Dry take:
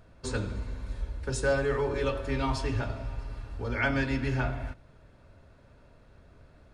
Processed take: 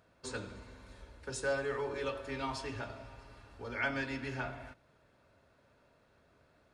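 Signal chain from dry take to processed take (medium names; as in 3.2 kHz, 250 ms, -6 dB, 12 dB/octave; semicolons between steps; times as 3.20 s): high-pass 160 Hz 6 dB/octave; bass shelf 380 Hz -5 dB; trim -5 dB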